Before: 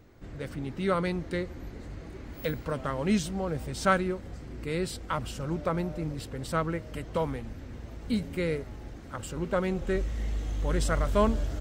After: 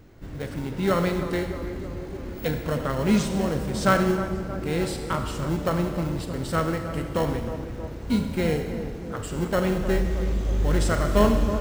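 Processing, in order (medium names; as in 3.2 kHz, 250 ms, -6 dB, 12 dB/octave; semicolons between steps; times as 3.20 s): in parallel at -7.5 dB: sample-rate reducer 1.2 kHz, jitter 0%; on the sum: tape echo 313 ms, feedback 79%, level -9 dB, low-pass 1.1 kHz; Schroeder reverb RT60 1.4 s, combs from 27 ms, DRR 6 dB; trim +2.5 dB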